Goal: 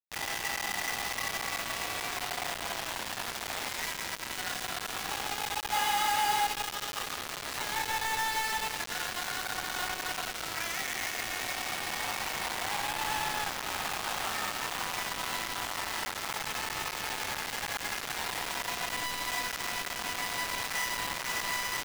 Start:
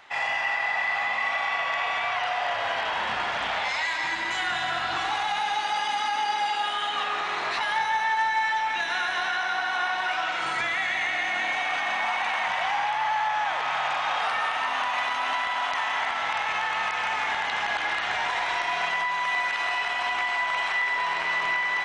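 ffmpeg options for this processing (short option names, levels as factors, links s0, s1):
-filter_complex "[0:a]asettb=1/sr,asplit=3[s0][s1][s2];[s0]atrim=end=5.734[s3];[s1]atrim=start=5.73:end=6.47,asetpts=PTS-STARTPTS,afade=t=in:d=0.004:c=qsin,afade=t=out:st=0.736:d=0.004:c=qsin,acontrast=70[s4];[s2]atrim=start=6.466[s5];[s3][s4]acrossfade=d=0.004:c1=hsin:c2=qsin[s6];[s6][s5]acrossfade=d=0.004:c1=qsin:c2=hsin,acrusher=bits=3:mix=0:aa=0.000001,volume=0.376"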